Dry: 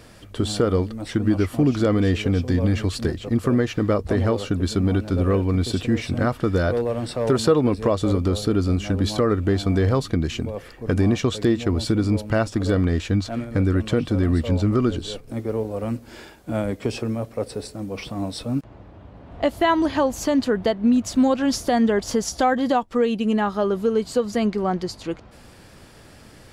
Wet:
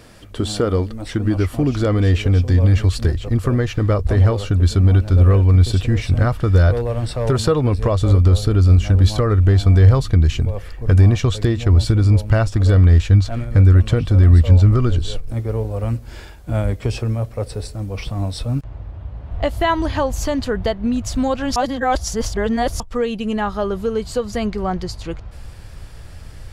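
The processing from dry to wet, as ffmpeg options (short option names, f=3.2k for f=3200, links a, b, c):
-filter_complex "[0:a]asplit=3[a][b][c];[a]atrim=end=21.562[d];[b]atrim=start=21.558:end=22.802,asetpts=PTS-STARTPTS,areverse[e];[c]atrim=start=22.798[f];[d][e]acrossfade=d=0.004:c1=hsin:c2=hsin[g];[g][f]acrossfade=d=0.004:c1=hsin:c2=hsin,asubboost=boost=9:cutoff=80,volume=2dB"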